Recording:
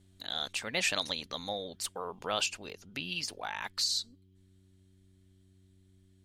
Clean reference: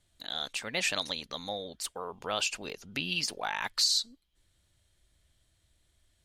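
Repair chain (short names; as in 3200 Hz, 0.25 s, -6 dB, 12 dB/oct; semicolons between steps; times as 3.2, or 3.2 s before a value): de-hum 94.2 Hz, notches 4; gain 0 dB, from 2.46 s +4.5 dB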